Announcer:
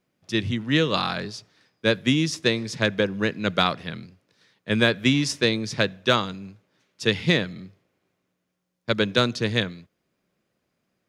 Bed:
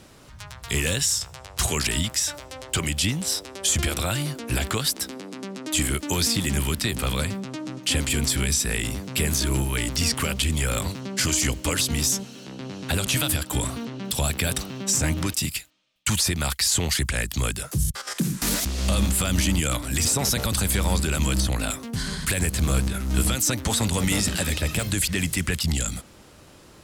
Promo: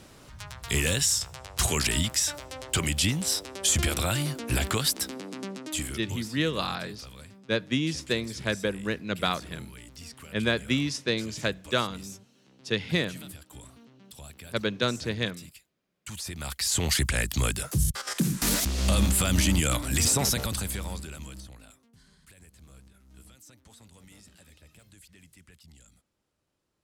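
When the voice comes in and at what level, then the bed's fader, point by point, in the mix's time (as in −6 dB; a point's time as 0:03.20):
5.65 s, −6.0 dB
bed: 0:05.48 −1.5 dB
0:06.36 −21.5 dB
0:15.88 −21.5 dB
0:16.90 −1 dB
0:20.21 −1 dB
0:21.95 −30.5 dB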